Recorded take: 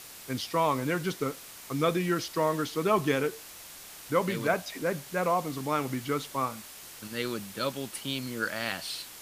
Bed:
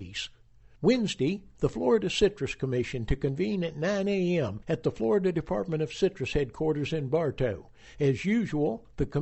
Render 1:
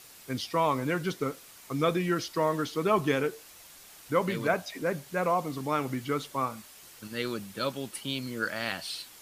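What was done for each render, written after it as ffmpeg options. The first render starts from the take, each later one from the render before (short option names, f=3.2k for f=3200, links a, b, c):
-af "afftdn=nr=6:nf=-47"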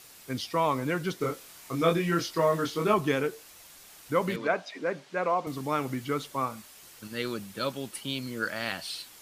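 -filter_complex "[0:a]asettb=1/sr,asplit=3[a][b][c];[a]atrim=end=1.184[d];[b]atrim=start=1.18:end=2.94,asetpts=PTS-STARTPTS,afade=t=in:d=0.004:c=qsin,afade=t=out:st=1.756:d=0.004:c=qsin,asplit=2[e][f];[f]adelay=24,volume=-2.5dB[g];[e][g]amix=inputs=2:normalize=0,atrim=end_sample=77616[h];[c]atrim=start=2.936[i];[d][h]acrossfade=d=0.004:c1=hsin:c2=qsin[j];[j][i]acrossfade=d=0.004:c1=qsin:c2=hsin,asettb=1/sr,asplit=3[k][l][m];[k]atrim=end=4.364[n];[l]atrim=start=4.36:end=5.47,asetpts=PTS-STARTPTS,afade=t=in:d=0.004:c=qsin,afade=t=out:st=1.106:d=0.004:c=qsin,highpass=250,lowpass=4.8k[o];[m]atrim=start=5.466[p];[n][o]acrossfade=d=0.004:c1=hsin:c2=qsin[q];[q][p]acrossfade=d=0.004:c1=qsin:c2=hsin"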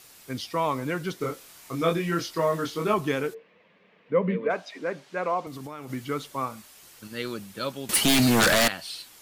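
-filter_complex "[0:a]asplit=3[a][b][c];[a]afade=t=out:st=3.33:d=0.02[d];[b]highpass=f=120:w=0.5412,highpass=f=120:w=1.3066,equalizer=f=120:t=q:w=4:g=-9,equalizer=f=190:t=q:w=4:g=9,equalizer=f=320:t=q:w=4:g=-6,equalizer=f=470:t=q:w=4:g=10,equalizer=f=790:t=q:w=4:g=-9,equalizer=f=1.4k:t=q:w=4:g=-10,lowpass=f=2.4k:w=0.5412,lowpass=f=2.4k:w=1.3066,afade=t=in:st=3.33:d=0.02,afade=t=out:st=4.49:d=0.02[e];[c]afade=t=in:st=4.49:d=0.02[f];[d][e][f]amix=inputs=3:normalize=0,asettb=1/sr,asplit=3[g][h][i];[g]atrim=end=5.464[j];[h]atrim=start=5.46:end=5.9,asetpts=PTS-STARTPTS,afade=t=in:d=0.004:c=qsin,afade=t=out:st=0.436:d=0.004:c=qsin,acompressor=threshold=-34dB:ratio=6:attack=3.2:release=140:knee=1:detection=peak[k];[i]atrim=start=5.896[l];[j][k]acrossfade=d=0.004:c1=hsin:c2=qsin[m];[m][l]acrossfade=d=0.004:c1=qsin:c2=hsin,asettb=1/sr,asplit=3[n][o][p];[n]atrim=end=7.894[q];[o]atrim=start=7.89:end=8.68,asetpts=PTS-STARTPTS,afade=t=in:d=0.004:c=qsin,afade=t=out:st=0.786:d=0.004:c=qsin,aeval=exprs='0.168*sin(PI/2*7.08*val(0)/0.168)':c=same[r];[p]atrim=start=8.676[s];[q][r]acrossfade=d=0.004:c1=hsin:c2=qsin[t];[t][s]acrossfade=d=0.004:c1=qsin:c2=hsin"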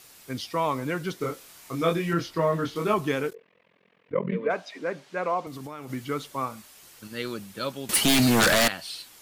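-filter_complex "[0:a]asettb=1/sr,asplit=3[a][b][c];[a]atrim=end=2.134[d];[b]atrim=start=2.13:end=2.76,asetpts=PTS-STARTPTS,afade=t=in:d=0.004:c=qsin,afade=t=out:st=0.626:d=0.004:c=qsin,bass=f=250:g=5,treble=f=4k:g=-7[e];[c]atrim=start=2.756[f];[d][e]acrossfade=d=0.004:c1=hsin:c2=qsin[g];[g][f]acrossfade=d=0.004:c1=qsin:c2=hsin,asettb=1/sr,asplit=3[h][i][j];[h]atrim=end=3.304[k];[i]atrim=start=3.3:end=4.33,asetpts=PTS-STARTPTS,afade=t=in:d=0.004:c=qsin,afade=t=out:st=1.026:d=0.004:c=qsin,tremolo=f=43:d=0.974[l];[j]atrim=start=4.326[m];[k][l]acrossfade=d=0.004:c1=hsin:c2=qsin[n];[n][m]acrossfade=d=0.004:c1=qsin:c2=hsin"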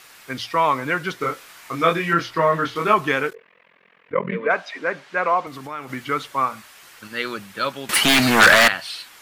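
-af "equalizer=f=1.6k:w=0.53:g=12,bandreject=f=60:t=h:w=6,bandreject=f=120:t=h:w=6"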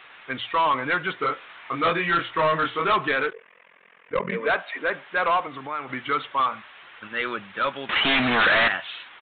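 -filter_complex "[0:a]asplit=2[a][b];[b]highpass=f=720:p=1,volume=7dB,asoftclip=type=tanh:threshold=-2.5dB[c];[a][c]amix=inputs=2:normalize=0,lowpass=f=3.1k:p=1,volume=-6dB,aresample=8000,asoftclip=type=tanh:threshold=-16dB,aresample=44100"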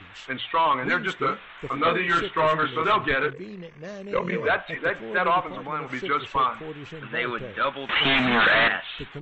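-filter_complex "[1:a]volume=-9.5dB[a];[0:a][a]amix=inputs=2:normalize=0"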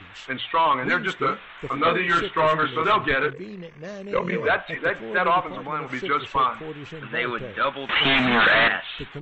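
-af "volume=1.5dB"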